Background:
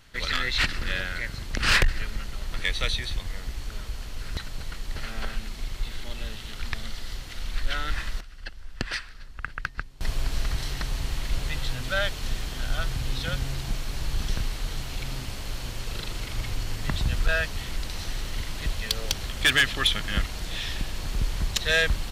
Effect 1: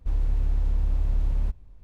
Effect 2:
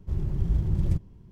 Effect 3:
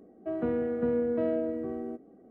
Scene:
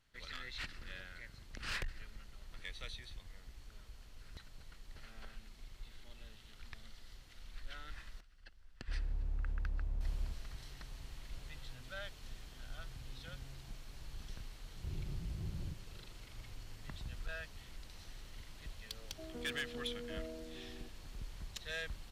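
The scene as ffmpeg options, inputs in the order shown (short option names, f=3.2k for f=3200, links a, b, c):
-filter_complex "[0:a]volume=-20dB[a];[2:a]acompressor=threshold=-29dB:ratio=6:attack=3.2:release=140:knee=1:detection=peak[b];[1:a]atrim=end=1.83,asetpts=PTS-STARTPTS,volume=-14dB,afade=t=in:d=0.004:c=hsin,afade=t=out:st=1.826:d=0.004:c=hsin,adelay=388962S[c];[b]atrim=end=1.31,asetpts=PTS-STARTPTS,volume=-8.5dB,afade=t=in:d=0.004:c=hsin,afade=t=out:st=1.306:d=0.004:c=hsin,adelay=650916S[d];[3:a]atrim=end=2.3,asetpts=PTS-STARTPTS,volume=-18dB,afade=t=in:d=0.004:c=hsin,afade=t=out:st=2.296:d=0.004:c=hsin,adelay=834372S[e];[a][c][d][e]amix=inputs=4:normalize=0"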